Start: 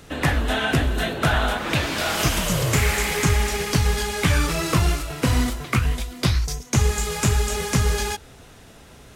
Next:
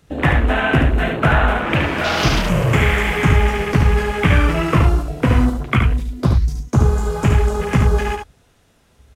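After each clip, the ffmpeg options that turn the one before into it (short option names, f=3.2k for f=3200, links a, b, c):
-filter_complex "[0:a]afwtdn=0.0398,asplit=2[a][b];[b]aecho=0:1:72:0.562[c];[a][c]amix=inputs=2:normalize=0,volume=5dB"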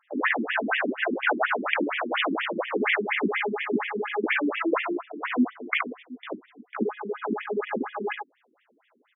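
-af "highpass=110,volume=8dB,asoftclip=hard,volume=-8dB,afftfilt=real='re*between(b*sr/1024,260*pow(2600/260,0.5+0.5*sin(2*PI*4.2*pts/sr))/1.41,260*pow(2600/260,0.5+0.5*sin(2*PI*4.2*pts/sr))*1.41)':imag='im*between(b*sr/1024,260*pow(2600/260,0.5+0.5*sin(2*PI*4.2*pts/sr))/1.41,260*pow(2600/260,0.5+0.5*sin(2*PI*4.2*pts/sr))*1.41)':win_size=1024:overlap=0.75"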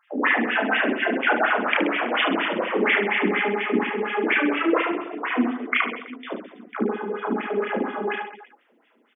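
-af "aecho=1:1:30|72|130.8|213.1|328.4:0.631|0.398|0.251|0.158|0.1,volume=2dB"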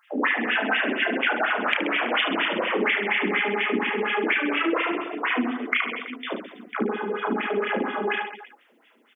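-af "highshelf=f=2.2k:g=10,acompressor=threshold=-20dB:ratio=6"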